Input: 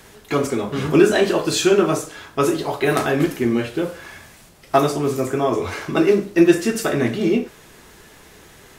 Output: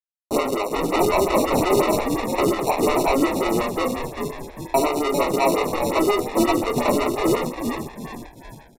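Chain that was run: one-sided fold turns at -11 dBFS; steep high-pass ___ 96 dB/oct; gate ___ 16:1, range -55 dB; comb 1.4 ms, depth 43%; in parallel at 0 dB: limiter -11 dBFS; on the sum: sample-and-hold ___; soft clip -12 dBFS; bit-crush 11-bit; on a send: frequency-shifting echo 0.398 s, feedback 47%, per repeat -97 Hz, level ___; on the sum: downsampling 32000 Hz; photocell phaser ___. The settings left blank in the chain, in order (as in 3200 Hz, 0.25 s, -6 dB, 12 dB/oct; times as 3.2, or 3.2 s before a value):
260 Hz, -38 dBFS, 27×, -5 dB, 5.6 Hz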